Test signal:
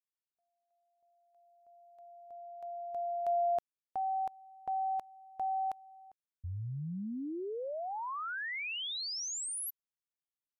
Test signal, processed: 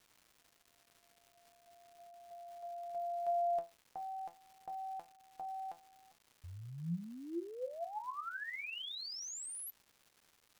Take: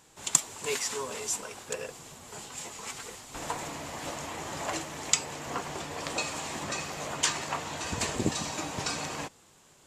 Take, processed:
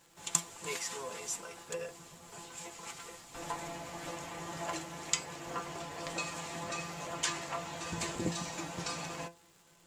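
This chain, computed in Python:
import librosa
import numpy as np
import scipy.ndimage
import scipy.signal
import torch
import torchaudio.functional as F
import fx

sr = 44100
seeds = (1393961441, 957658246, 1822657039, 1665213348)

y = fx.comb_fb(x, sr, f0_hz=170.0, decay_s=0.24, harmonics='all', damping=0.6, mix_pct=90)
y = fx.dmg_crackle(y, sr, seeds[0], per_s=430.0, level_db=-59.0)
y = y * 10.0 ** (5.5 / 20.0)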